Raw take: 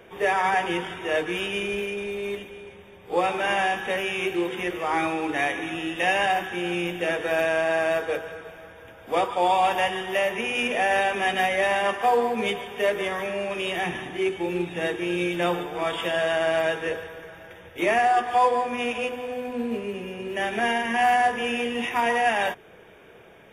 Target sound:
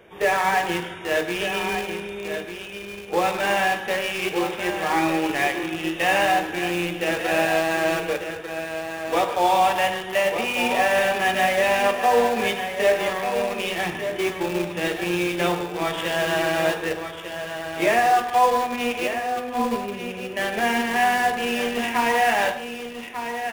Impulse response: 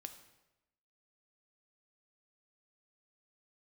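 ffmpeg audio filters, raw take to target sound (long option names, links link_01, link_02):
-filter_complex "[0:a]asplit=2[link_01][link_02];[link_02]acrusher=bits=3:mix=0:aa=0.000001,volume=-8dB[link_03];[link_01][link_03]amix=inputs=2:normalize=0,aecho=1:1:1195:0.376[link_04];[1:a]atrim=start_sample=2205,atrim=end_sample=6615[link_05];[link_04][link_05]afir=irnorm=-1:irlink=0,volume=4dB"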